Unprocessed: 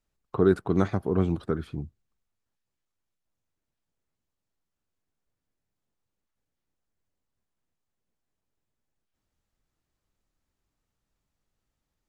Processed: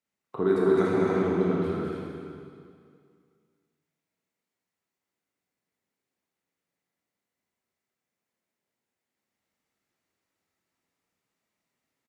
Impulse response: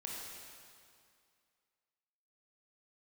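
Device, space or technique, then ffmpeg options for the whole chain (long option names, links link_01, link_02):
stadium PA: -filter_complex "[0:a]asettb=1/sr,asplit=3[link_01][link_02][link_03];[link_01]atrim=end=0.934[link_04];[link_02]atrim=start=0.93:end=1.53,asetpts=PTS-STARTPTS,afade=type=in:duration=0.004:curve=qsin,afade=type=out:start_time=0.596:duration=0.004:curve=qsin,lowpass=5100[link_05];[link_03]atrim=start=1.526[link_06];[link_04][link_05]acrossfade=duration=0.004:curve1=hsin:curve2=qsin[link_07];[link_07][link_06]acrossfade=duration=0.004:curve1=qsin:curve2=hsin,highpass=170,equalizer=frequency=2100:width_type=o:width=0.34:gain=7,aecho=1:1:209.9|285.7:0.708|0.631[link_08];[1:a]atrim=start_sample=2205[link_09];[link_08][link_09]afir=irnorm=-1:irlink=0"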